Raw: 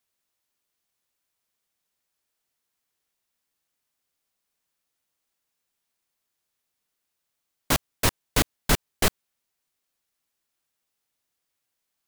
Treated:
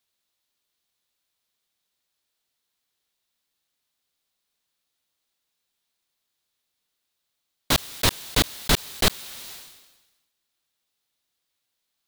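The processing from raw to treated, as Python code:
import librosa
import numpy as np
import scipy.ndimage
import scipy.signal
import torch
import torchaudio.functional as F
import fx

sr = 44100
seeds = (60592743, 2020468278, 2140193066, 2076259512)

y = fx.peak_eq(x, sr, hz=3800.0, db=7.5, octaves=0.69)
y = fx.sustainer(y, sr, db_per_s=50.0)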